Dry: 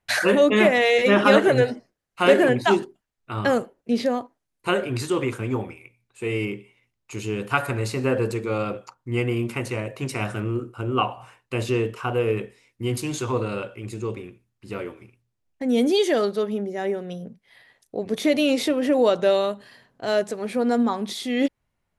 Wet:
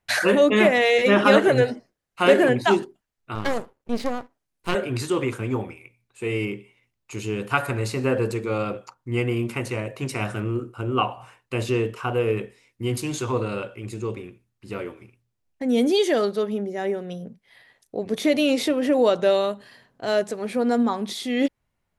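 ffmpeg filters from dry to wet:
-filter_complex "[0:a]asettb=1/sr,asplit=3[a][b][c];[a]atrim=end=3.354[d];[b]atrim=start=3.35:end=4.75,asetpts=PTS-STARTPTS,afade=t=in:d=0.004:c=qsin,afade=t=out:st=1.396:d=0.004:c=qsin,aeval=exprs='max(val(0),0)':c=same[e];[c]atrim=start=4.746[f];[d][e]acrossfade=d=0.004:c1=hsin:c2=qsin[g];[g][f]acrossfade=d=0.004:c1=qsin:c2=hsin"

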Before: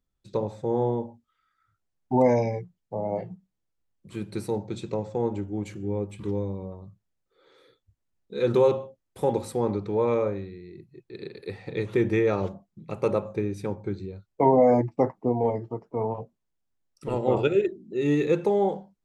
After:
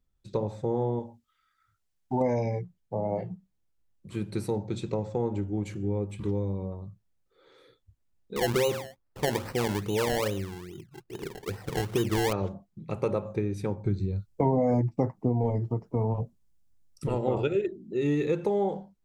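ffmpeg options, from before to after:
-filter_complex "[0:a]asettb=1/sr,asplit=3[a][b][c];[a]atrim=end=0.994[d];[b]atrim=start=0.99:end=2.21,asetpts=PTS-STARTPTS,afade=t=in:d=0.004:c=qsin,afade=t=out:st=1.216:d=0.004:c=qsin,tiltshelf=f=1.4k:g=-5[e];[c]atrim=start=2.206[f];[d][e]acrossfade=d=0.004:c1=hsin:c2=qsin[g];[g][f]acrossfade=d=0.004:c1=qsin:c2=hsin,asettb=1/sr,asplit=3[h][i][j];[h]atrim=end=8.364[k];[i]atrim=start=8.36:end=12.33,asetpts=PTS-STARTPTS,afade=t=in:d=0.004:c=qsin,afade=t=out:st=3.966:d=0.004:c=qsin,acrusher=samples=25:mix=1:aa=0.000001:lfo=1:lforange=25:lforate=2.4[l];[j]atrim=start=12.326[m];[k][l]acrossfade=d=0.004:c1=hsin:c2=qsin[n];[n][m]acrossfade=d=0.004:c1=qsin:c2=hsin,asettb=1/sr,asplit=3[o][p][q];[o]atrim=end=13.854[r];[p]atrim=start=13.85:end=17.07,asetpts=PTS-STARTPTS,afade=t=in:d=0.004:c=qsin,afade=t=out:st=3.216:d=0.004:c=qsin,bass=f=250:g=9,treble=f=4k:g=7[s];[q]atrim=start=17.066[t];[r][s]acrossfade=d=0.004:c1=hsin:c2=qsin[u];[u][t]acrossfade=d=0.004:c1=qsin:c2=hsin,lowshelf=f=120:g=7,acompressor=threshold=-25dB:ratio=2.5"

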